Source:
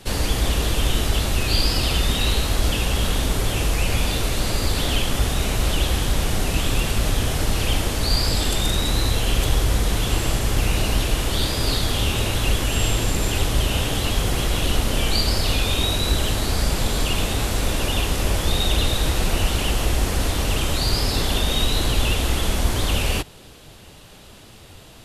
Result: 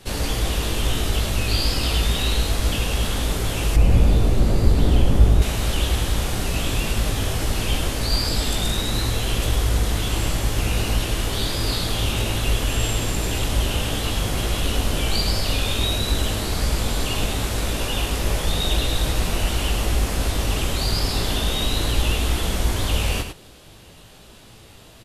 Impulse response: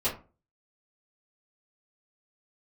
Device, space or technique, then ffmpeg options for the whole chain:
slapback doubling: -filter_complex "[0:a]asplit=3[s0][s1][s2];[s1]adelay=18,volume=0.501[s3];[s2]adelay=103,volume=0.447[s4];[s0][s3][s4]amix=inputs=3:normalize=0,asettb=1/sr,asplit=3[s5][s6][s7];[s5]atrim=end=3.764[s8];[s6]atrim=start=3.76:end=5.42,asetpts=PTS-STARTPTS,afade=t=in:d=0.004:c=qsin,afade=t=out:st=1.656:d=0.004:c=qsin,tiltshelf=f=840:g=8.5[s9];[s7]atrim=start=5.416[s10];[s8][s9]acrossfade=d=0.004:c1=hsin:c2=qsin[s11];[s11][s10]acrossfade=d=0.004:c1=qsin:c2=hsin,volume=0.708"

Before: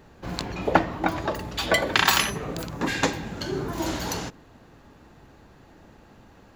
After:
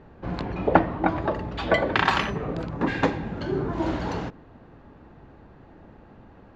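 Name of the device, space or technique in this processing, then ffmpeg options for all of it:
phone in a pocket: -af "lowpass=3700,highshelf=f=2200:g=-11.5,volume=1.41"

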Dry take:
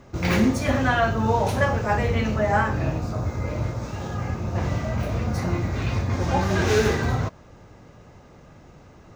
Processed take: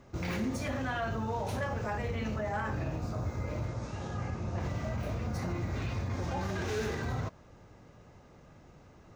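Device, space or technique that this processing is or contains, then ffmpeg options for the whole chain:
clipper into limiter: -filter_complex "[0:a]asettb=1/sr,asplit=3[s0][s1][s2];[s0]atrim=end=3.684[s3];[s1]atrim=start=3.68:end=4.6,asetpts=PTS-STARTPTS,afade=t=in:d=0.004:c=qsin,afade=t=out:st=0.916:d=0.004:c=qsin,lowpass=f=9800:w=0.5412,lowpass=f=9800:w=1.3066[s4];[s2]atrim=start=4.596[s5];[s3][s4]acrossfade=d=0.004:c1=hsin:c2=qsin[s6];[s6][s5]acrossfade=d=0.004:c1=qsin:c2=hsin,asoftclip=type=hard:threshold=0.251,alimiter=limit=0.119:level=0:latency=1:release=56,volume=0.422"

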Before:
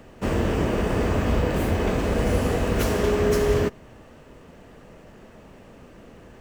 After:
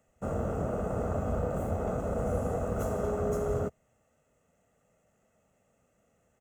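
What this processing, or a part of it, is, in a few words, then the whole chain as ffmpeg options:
budget condenser microphone: -af "afwtdn=0.0447,highpass=f=120:p=1,highshelf=f=5700:t=q:w=3:g=6.5,aecho=1:1:1.5:0.57,volume=0.447"

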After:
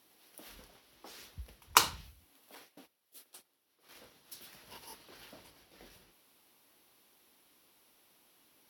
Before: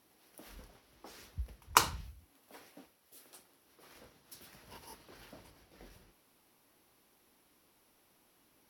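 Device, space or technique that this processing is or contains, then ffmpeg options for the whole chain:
presence and air boost: -filter_complex "[0:a]asettb=1/sr,asplit=3[s0][s1][s2];[s0]atrim=end=2.554[s3];[s1]atrim=start=2.55:end=3.89,asetpts=PTS-STARTPTS,afade=t=in:d=0.004:c=qsin,afade=t=out:st=1.336:d=0.004:c=qsin,agate=range=0.251:threshold=0.00141:ratio=16:detection=peak[s4];[s2]atrim=start=3.886[s5];[s3][s4]acrossfade=d=0.004:c1=hsin:c2=qsin[s6];[s6][s5]acrossfade=d=0.004:c1=qsin:c2=hsin,lowshelf=f=140:g=-8,equalizer=f=3500:t=o:w=1.1:g=5,highshelf=f=11000:g=6"

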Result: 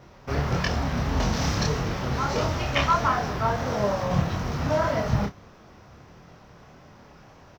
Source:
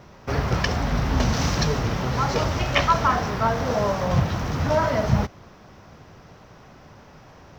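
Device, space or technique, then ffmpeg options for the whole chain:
double-tracked vocal: -filter_complex "[0:a]asplit=2[s0][s1];[s1]adelay=29,volume=0.282[s2];[s0][s2]amix=inputs=2:normalize=0,flanger=delay=22.5:depth=7.3:speed=1.6"

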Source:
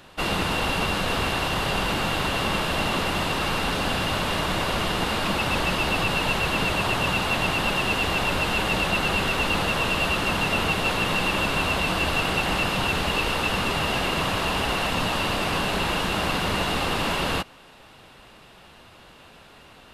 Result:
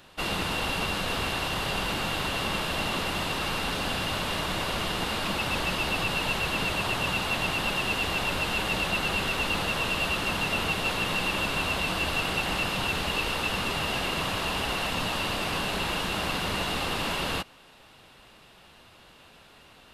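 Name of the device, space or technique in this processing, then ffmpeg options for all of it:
presence and air boost: -af "equalizer=f=3800:t=o:w=1.7:g=2.5,highshelf=f=9400:g=5,volume=0.531"

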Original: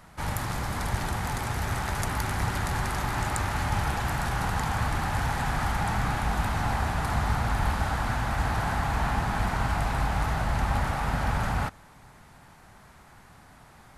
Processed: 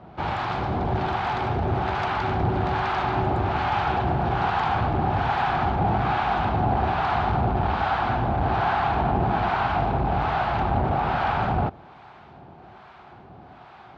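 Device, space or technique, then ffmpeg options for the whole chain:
guitar amplifier with harmonic tremolo: -filter_complex "[0:a]acrossover=split=740[s0][s1];[s0]aeval=exprs='val(0)*(1-0.7/2+0.7/2*cos(2*PI*1.2*n/s))':c=same[s2];[s1]aeval=exprs='val(0)*(1-0.7/2-0.7/2*cos(2*PI*1.2*n/s))':c=same[s3];[s2][s3]amix=inputs=2:normalize=0,asoftclip=type=tanh:threshold=0.0708,highpass=76,equalizer=f=370:t=q:w=4:g=9,equalizer=f=730:t=q:w=4:g=8,equalizer=f=1900:t=q:w=4:g=-7,lowpass=f=3600:w=0.5412,lowpass=f=3600:w=1.3066,volume=2.66"

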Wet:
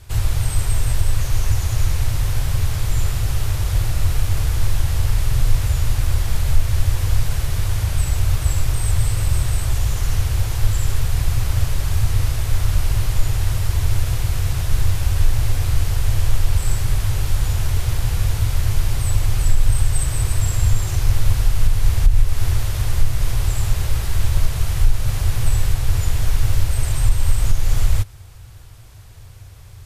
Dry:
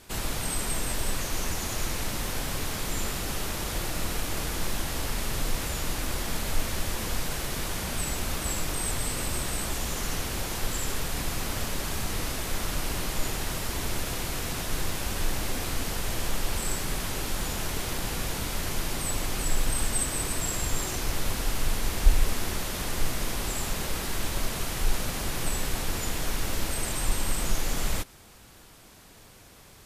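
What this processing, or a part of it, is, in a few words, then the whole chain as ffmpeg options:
car stereo with a boomy subwoofer: -af "lowshelf=f=150:t=q:w=3:g=12.5,alimiter=limit=0.562:level=0:latency=1:release=215,volume=1.12"

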